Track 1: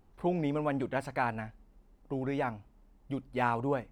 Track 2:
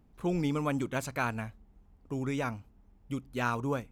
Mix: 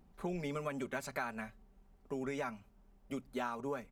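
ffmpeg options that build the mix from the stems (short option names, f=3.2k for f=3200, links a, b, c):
-filter_complex "[0:a]volume=-5.5dB[a];[1:a]aecho=1:1:5.2:0.74,volume=-1,volume=-4dB[b];[a][b]amix=inputs=2:normalize=0,acompressor=threshold=-35dB:ratio=6"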